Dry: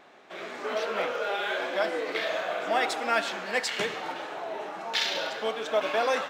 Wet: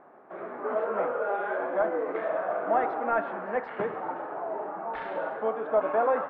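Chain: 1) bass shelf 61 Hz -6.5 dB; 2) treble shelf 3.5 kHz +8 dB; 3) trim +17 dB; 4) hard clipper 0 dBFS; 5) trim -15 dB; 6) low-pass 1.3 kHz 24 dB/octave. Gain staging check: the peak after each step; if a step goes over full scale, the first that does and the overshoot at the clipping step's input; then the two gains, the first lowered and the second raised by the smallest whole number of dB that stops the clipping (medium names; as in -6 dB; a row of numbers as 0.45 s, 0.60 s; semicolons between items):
-12.0 dBFS, -9.5 dBFS, +7.5 dBFS, 0.0 dBFS, -15.0 dBFS, -14.0 dBFS; step 3, 7.5 dB; step 3 +9 dB, step 5 -7 dB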